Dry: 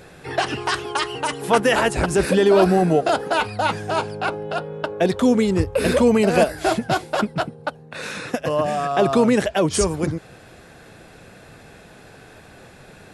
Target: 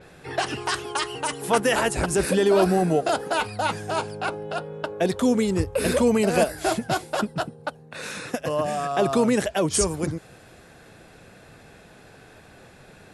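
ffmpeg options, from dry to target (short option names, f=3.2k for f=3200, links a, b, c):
-filter_complex "[0:a]asettb=1/sr,asplit=3[a][b][c];[a]atrim=end=7.194[d];[b]atrim=start=7.19:end=7.6,asetpts=PTS-STARTPTS,afade=t=in:d=0.004:c=qsin,afade=t=out:st=0.406:d=0.004:c=qsin,bandreject=f=2.2k:w=6.7[e];[c]atrim=start=7.596[f];[d][e]acrossfade=d=0.004:c1=hsin:c2=qsin[g];[g][f]acrossfade=d=0.004:c1=qsin:c2=hsin,adynamicequalizer=threshold=0.00891:dfrequency=5800:dqfactor=0.7:tfrequency=5800:tqfactor=0.7:attack=5:release=100:ratio=0.375:range=3.5:mode=boostabove:tftype=highshelf,volume=-4dB"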